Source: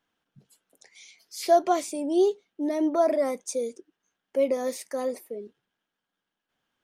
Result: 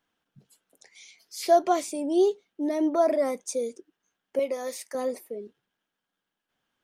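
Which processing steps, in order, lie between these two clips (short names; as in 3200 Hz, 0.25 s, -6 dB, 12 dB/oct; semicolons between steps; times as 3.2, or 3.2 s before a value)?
4.39–4.95 HPF 670 Hz 6 dB/oct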